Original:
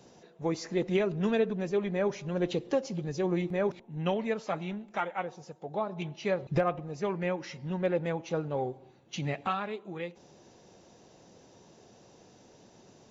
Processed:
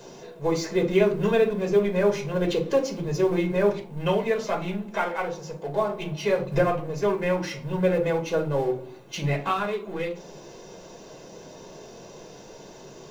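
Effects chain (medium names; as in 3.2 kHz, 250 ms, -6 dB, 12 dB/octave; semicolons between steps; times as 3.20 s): companding laws mixed up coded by mu; peaking EQ 94 Hz -8 dB 1.1 oct; reverberation RT60 0.35 s, pre-delay 3 ms, DRR 2 dB; trim +1.5 dB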